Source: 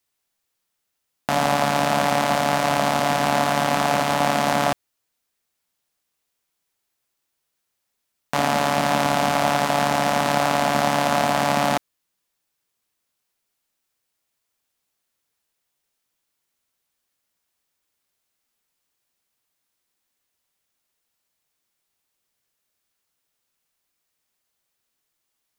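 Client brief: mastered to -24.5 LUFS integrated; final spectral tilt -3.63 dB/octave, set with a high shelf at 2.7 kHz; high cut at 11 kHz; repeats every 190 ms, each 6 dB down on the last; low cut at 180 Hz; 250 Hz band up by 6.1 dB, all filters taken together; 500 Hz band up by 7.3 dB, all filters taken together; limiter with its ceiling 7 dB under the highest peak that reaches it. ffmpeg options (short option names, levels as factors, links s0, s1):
-af "highpass=180,lowpass=11000,equalizer=f=250:t=o:g=6,equalizer=f=500:t=o:g=8.5,highshelf=f=2700:g=4,alimiter=limit=0.447:level=0:latency=1,aecho=1:1:190|380|570|760|950|1140:0.501|0.251|0.125|0.0626|0.0313|0.0157,volume=0.501"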